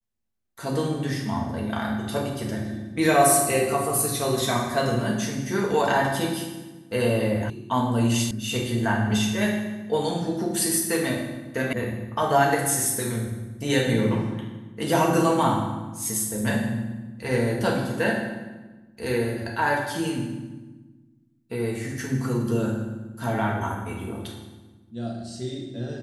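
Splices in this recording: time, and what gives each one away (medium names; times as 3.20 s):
7.50 s: sound stops dead
8.31 s: sound stops dead
11.73 s: sound stops dead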